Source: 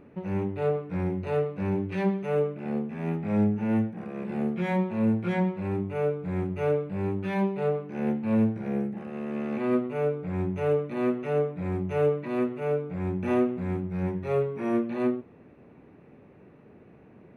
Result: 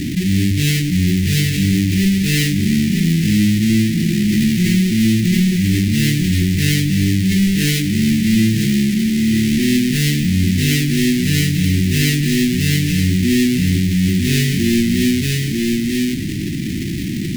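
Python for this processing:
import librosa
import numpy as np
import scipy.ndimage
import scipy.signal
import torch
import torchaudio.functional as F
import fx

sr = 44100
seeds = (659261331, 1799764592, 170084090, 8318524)

p1 = fx.halfwave_hold(x, sr)
p2 = fx.sample_hold(p1, sr, seeds[0], rate_hz=2200.0, jitter_pct=0)
p3 = p1 + F.gain(torch.from_numpy(p2), -10.0).numpy()
p4 = scipy.signal.sosfilt(scipy.signal.cheby1(4, 1.0, [330.0, 1900.0], 'bandstop', fs=sr, output='sos'), p3)
p5 = p4 + 10.0 ** (-9.0 / 20.0) * np.pad(p4, (int(944 * sr / 1000.0), 0))[:len(p4)]
p6 = fx.env_flatten(p5, sr, amount_pct=70)
y = F.gain(torch.from_numpy(p6), 3.0).numpy()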